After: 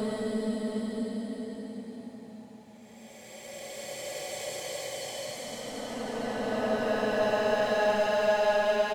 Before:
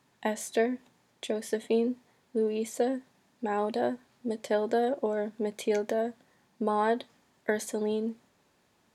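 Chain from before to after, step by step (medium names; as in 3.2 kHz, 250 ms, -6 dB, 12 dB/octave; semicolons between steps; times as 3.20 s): hard clipper -28.5 dBFS, distortion -8 dB; graphic EQ with 31 bands 125 Hz +9 dB, 400 Hz -6 dB, 800 Hz +7 dB; Paulstretch 38×, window 0.10 s, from 4.33 s; delay 672 ms -11 dB; trim +3.5 dB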